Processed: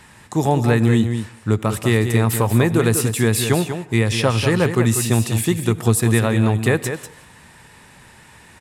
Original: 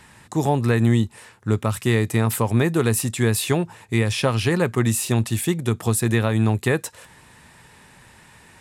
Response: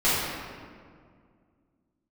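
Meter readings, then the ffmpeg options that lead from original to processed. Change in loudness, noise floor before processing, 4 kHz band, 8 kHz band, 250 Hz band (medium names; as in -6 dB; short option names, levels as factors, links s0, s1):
+3.0 dB, -51 dBFS, +3.0 dB, +3.0 dB, +3.0 dB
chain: -filter_complex "[0:a]aecho=1:1:193:0.376,asplit=2[s0][s1];[1:a]atrim=start_sample=2205,atrim=end_sample=6174,adelay=71[s2];[s1][s2]afir=irnorm=-1:irlink=0,volume=0.0211[s3];[s0][s3]amix=inputs=2:normalize=0,volume=1.33"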